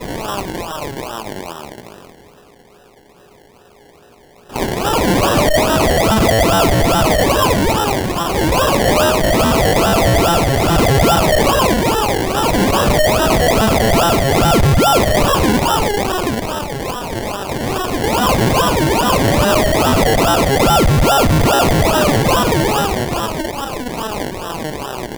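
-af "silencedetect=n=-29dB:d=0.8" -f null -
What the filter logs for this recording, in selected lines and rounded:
silence_start: 2.10
silence_end: 4.50 | silence_duration: 2.40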